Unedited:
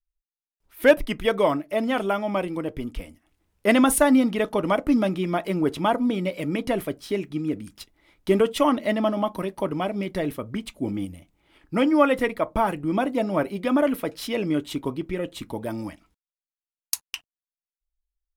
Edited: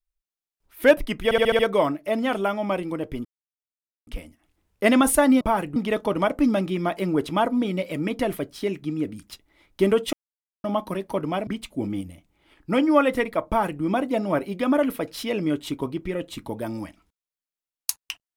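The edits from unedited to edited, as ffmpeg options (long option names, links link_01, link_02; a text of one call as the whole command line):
ffmpeg -i in.wav -filter_complex "[0:a]asplit=12[link_01][link_02][link_03][link_04][link_05][link_06][link_07][link_08][link_09][link_10][link_11][link_12];[link_01]atrim=end=1.312[link_13];[link_02]atrim=start=1.238:end=1.312[link_14];[link_03]atrim=start=1.238:end=1.312[link_15];[link_04]atrim=start=1.238:end=1.312[link_16];[link_05]atrim=start=1.238:end=1.312[link_17];[link_06]atrim=start=1.238:end=2.9,asetpts=PTS-STARTPTS,afade=type=out:start_time=1.658:duration=0.004:curve=hsin,apad=pad_dur=0.82[link_18];[link_07]atrim=start=2.9:end=4.242,asetpts=PTS-STARTPTS,afade=type=in:duration=0.004:curve=hsin[link_19];[link_08]atrim=start=12.508:end=12.862[link_20];[link_09]atrim=start=4.238:end=8.61,asetpts=PTS-STARTPTS,afade=type=out:start_time=4.368:duration=0.004:curve=hsin[link_21];[link_10]atrim=start=8.61:end=9.12,asetpts=PTS-STARTPTS,volume=0[link_22];[link_11]atrim=start=9.12:end=9.952,asetpts=PTS-STARTPTS,afade=type=in:duration=0.004:curve=hsin[link_23];[link_12]atrim=start=10.508[link_24];[link_13][link_14]acrossfade=duration=0.004:curve1=hsin:curve2=hsin[link_25];[link_25][link_15]acrossfade=duration=0.004:curve1=hsin:curve2=hsin[link_26];[link_26][link_16]acrossfade=duration=0.004:curve1=hsin:curve2=hsin[link_27];[link_27][link_17]acrossfade=duration=0.004:curve1=hsin:curve2=hsin[link_28];[link_18][link_19]concat=n=2:v=0:a=1[link_29];[link_28][link_29]acrossfade=duration=0.004:curve1=hsin:curve2=hsin[link_30];[link_30][link_20]acrossfade=duration=0.004:curve1=hsin:curve2=hsin[link_31];[link_21][link_22][link_23]concat=n=3:v=0:a=1[link_32];[link_31][link_32]acrossfade=duration=0.004:curve1=hsin:curve2=hsin[link_33];[link_33][link_24]acrossfade=duration=0.004:curve1=hsin:curve2=hsin" out.wav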